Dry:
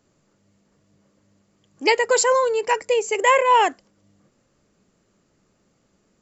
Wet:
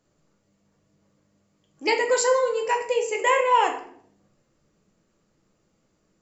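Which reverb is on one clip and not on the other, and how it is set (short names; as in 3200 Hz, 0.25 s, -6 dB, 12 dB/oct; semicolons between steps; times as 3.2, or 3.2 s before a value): shoebox room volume 100 m³, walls mixed, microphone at 0.63 m; gain -6 dB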